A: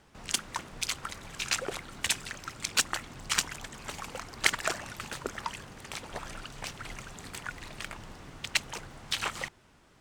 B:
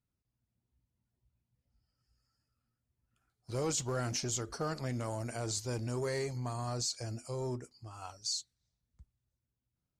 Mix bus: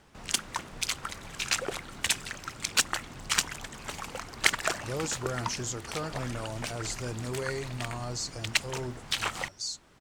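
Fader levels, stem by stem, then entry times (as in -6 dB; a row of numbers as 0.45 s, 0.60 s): +1.5 dB, +0.5 dB; 0.00 s, 1.35 s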